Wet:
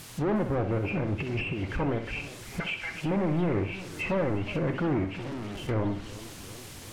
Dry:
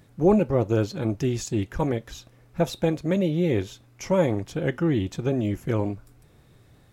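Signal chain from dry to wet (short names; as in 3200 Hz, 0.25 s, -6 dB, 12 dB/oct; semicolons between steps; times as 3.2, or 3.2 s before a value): nonlinear frequency compression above 2000 Hz 4:1; 2.6–3.02 HPF 1300 Hz 24 dB/oct; in parallel at +3 dB: limiter -19.5 dBFS, peak gain reduction 11 dB; 0.78–1.68 on the sum: negative-ratio compressor -22 dBFS, ratio -0.5; soft clip -21.5 dBFS, distortion -7 dB; added noise white -42 dBFS; 5.04–5.69 overloaded stage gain 34 dB; on a send: flutter echo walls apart 10.8 m, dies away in 0.4 s; on the sum: treble ducked by the level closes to 1900 Hz, closed at -22 dBFS; warbling echo 0.359 s, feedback 70%, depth 171 cents, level -17 dB; gain -3 dB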